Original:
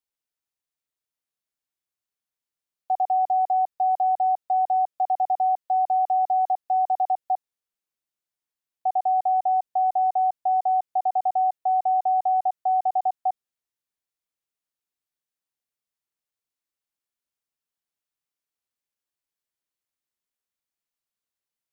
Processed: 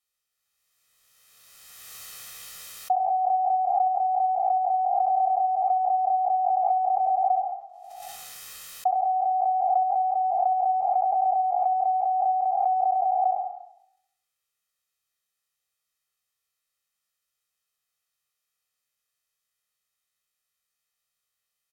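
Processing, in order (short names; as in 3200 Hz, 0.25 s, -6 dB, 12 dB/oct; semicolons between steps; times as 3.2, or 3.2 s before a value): spectral trails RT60 0.72 s; bell 640 Hz -8 dB 0.45 oct; treble ducked by the level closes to 710 Hz, closed at -24.5 dBFS; low shelf 490 Hz -8 dB; comb 1.6 ms, depth 85%; on a send: flutter echo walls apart 11.3 m, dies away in 0.48 s; on the sum: backwards sustainer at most 24 dB/s; gain +4 dB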